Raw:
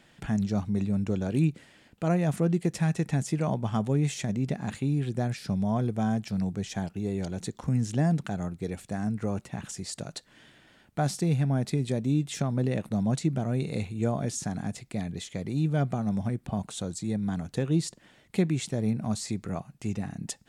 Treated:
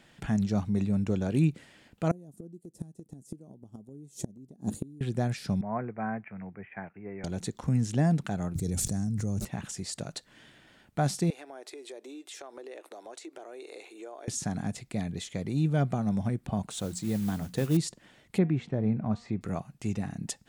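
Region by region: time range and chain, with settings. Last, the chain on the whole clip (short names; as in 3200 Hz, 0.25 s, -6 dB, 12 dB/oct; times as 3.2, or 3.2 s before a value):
2.11–5.01 EQ curve 150 Hz 0 dB, 220 Hz +5 dB, 330 Hz +8 dB, 2200 Hz -23 dB, 4000 Hz -8 dB, 11000 Hz +9 dB + flipped gate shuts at -18 dBFS, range -25 dB
5.61–7.24 steep low-pass 2300 Hz 72 dB/oct + tilt +4 dB/oct + three-band expander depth 70%
8.55–9.45 EQ curve 120 Hz 0 dB, 990 Hz -17 dB, 2800 Hz -16 dB, 6100 Hz +3 dB, 9200 Hz -1 dB + fast leveller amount 100%
11.3–14.28 elliptic high-pass 340 Hz, stop band 50 dB + compressor 3:1, threshold -43 dBFS
16.7–17.77 notches 60/120/180/240 Hz + modulation noise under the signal 20 dB
18.38–19.41 LPF 1900 Hz + de-hum 237.7 Hz, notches 14
whole clip: dry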